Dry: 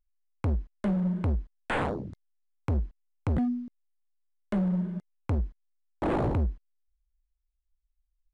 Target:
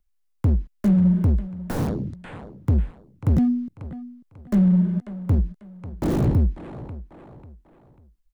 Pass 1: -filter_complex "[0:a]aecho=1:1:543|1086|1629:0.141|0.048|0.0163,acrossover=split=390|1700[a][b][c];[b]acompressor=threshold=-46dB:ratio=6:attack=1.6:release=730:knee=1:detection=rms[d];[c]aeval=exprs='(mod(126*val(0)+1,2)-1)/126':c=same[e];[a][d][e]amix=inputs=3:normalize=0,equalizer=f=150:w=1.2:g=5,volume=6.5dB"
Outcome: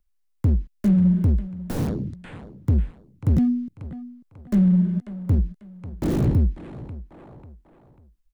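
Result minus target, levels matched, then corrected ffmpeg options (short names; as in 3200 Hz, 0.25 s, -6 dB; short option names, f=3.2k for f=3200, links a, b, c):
compressor: peak gain reduction +6 dB
-filter_complex "[0:a]aecho=1:1:543|1086|1629:0.141|0.048|0.0163,acrossover=split=390|1700[a][b][c];[b]acompressor=threshold=-38.5dB:ratio=6:attack=1.6:release=730:knee=1:detection=rms[d];[c]aeval=exprs='(mod(126*val(0)+1,2)-1)/126':c=same[e];[a][d][e]amix=inputs=3:normalize=0,equalizer=f=150:w=1.2:g=5,volume=6.5dB"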